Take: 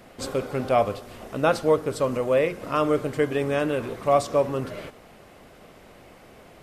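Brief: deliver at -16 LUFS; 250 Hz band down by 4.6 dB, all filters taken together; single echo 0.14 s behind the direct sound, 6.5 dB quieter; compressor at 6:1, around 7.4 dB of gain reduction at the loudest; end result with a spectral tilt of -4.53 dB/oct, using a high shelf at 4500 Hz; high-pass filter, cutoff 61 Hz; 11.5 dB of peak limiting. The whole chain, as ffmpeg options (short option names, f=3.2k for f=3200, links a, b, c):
-af "highpass=61,equalizer=f=250:t=o:g=-6,highshelf=f=4.5k:g=6.5,acompressor=threshold=-23dB:ratio=6,alimiter=level_in=0.5dB:limit=-24dB:level=0:latency=1,volume=-0.5dB,aecho=1:1:140:0.473,volume=18dB"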